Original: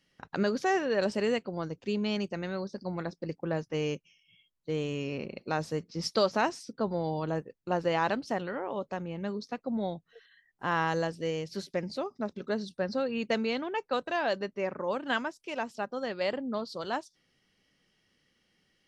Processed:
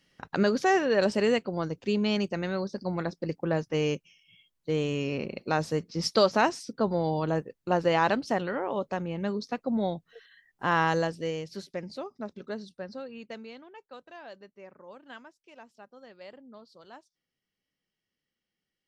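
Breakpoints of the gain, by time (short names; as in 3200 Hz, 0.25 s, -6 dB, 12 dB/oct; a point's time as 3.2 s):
10.9 s +4 dB
11.69 s -3.5 dB
12.41 s -3.5 dB
13.72 s -16 dB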